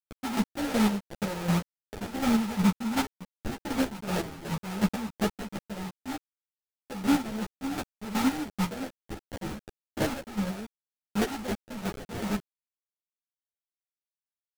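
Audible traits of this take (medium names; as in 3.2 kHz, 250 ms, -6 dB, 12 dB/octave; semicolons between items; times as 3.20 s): a quantiser's noise floor 6-bit, dither none; chopped level 2.7 Hz, depth 65%, duty 35%; aliases and images of a low sample rate 1.1 kHz, jitter 20%; a shimmering, thickened sound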